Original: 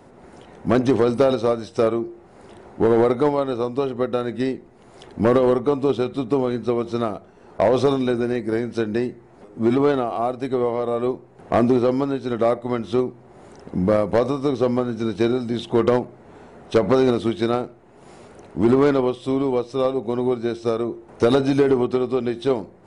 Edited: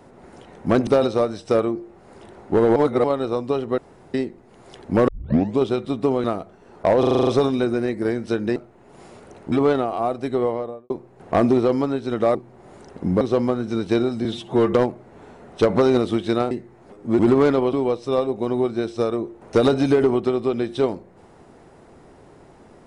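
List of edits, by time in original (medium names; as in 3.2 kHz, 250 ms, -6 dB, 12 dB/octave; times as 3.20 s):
0.87–1.15 s: delete
3.04–3.32 s: reverse
4.06–4.42 s: room tone
5.36 s: tape start 0.51 s
6.52–6.99 s: delete
7.74 s: stutter 0.04 s, 8 plays
9.03–9.71 s: swap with 17.64–18.60 s
10.62–11.09 s: studio fade out
12.54–13.06 s: delete
13.92–14.50 s: delete
15.54–15.86 s: stretch 1.5×
19.14–19.40 s: delete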